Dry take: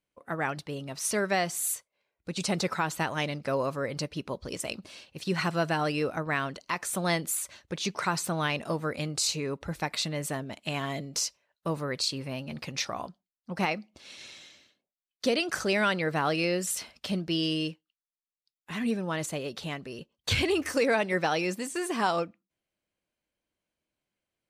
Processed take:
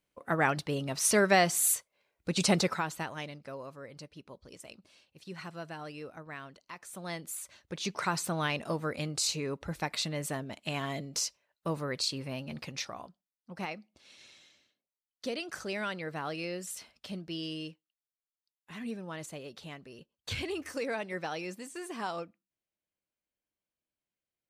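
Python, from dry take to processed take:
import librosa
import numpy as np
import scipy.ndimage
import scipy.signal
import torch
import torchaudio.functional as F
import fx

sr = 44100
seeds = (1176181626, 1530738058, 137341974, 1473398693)

y = fx.gain(x, sr, db=fx.line((2.53, 3.5), (2.86, -5.0), (3.59, -14.5), (6.83, -14.5), (7.96, -2.5), (12.57, -2.5), (13.07, -9.5)))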